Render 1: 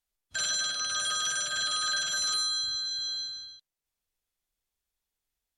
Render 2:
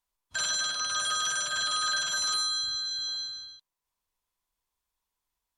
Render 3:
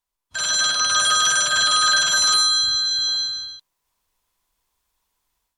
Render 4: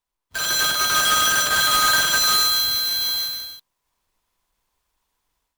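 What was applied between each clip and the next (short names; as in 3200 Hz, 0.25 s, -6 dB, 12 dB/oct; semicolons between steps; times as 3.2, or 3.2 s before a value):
bell 1000 Hz +13.5 dB 0.38 oct
AGC gain up to 11.5 dB
half-waves squared off; gain -4 dB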